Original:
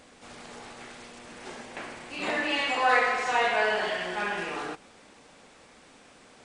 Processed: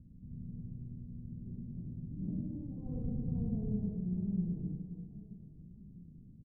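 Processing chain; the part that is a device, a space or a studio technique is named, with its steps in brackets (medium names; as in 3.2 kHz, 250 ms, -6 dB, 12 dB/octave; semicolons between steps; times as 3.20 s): the neighbour's flat through the wall (low-pass 160 Hz 24 dB/octave; peaking EQ 170 Hz +5 dB 0.67 oct); 2.85–3.77 s: bass shelf 400 Hz +9 dB; reverse bouncing-ball echo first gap 100 ms, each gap 1.6×, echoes 5; trim +10.5 dB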